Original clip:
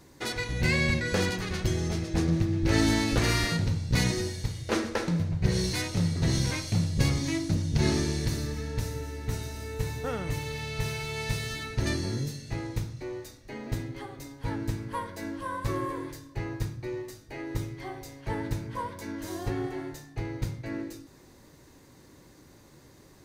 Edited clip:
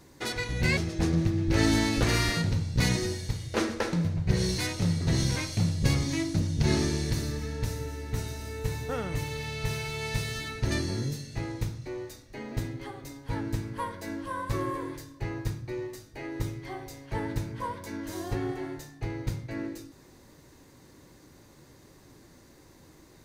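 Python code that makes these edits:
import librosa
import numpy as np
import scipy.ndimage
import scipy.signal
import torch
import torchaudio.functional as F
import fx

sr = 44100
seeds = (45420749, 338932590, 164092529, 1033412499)

y = fx.edit(x, sr, fx.cut(start_s=0.77, length_s=1.15), tone=tone)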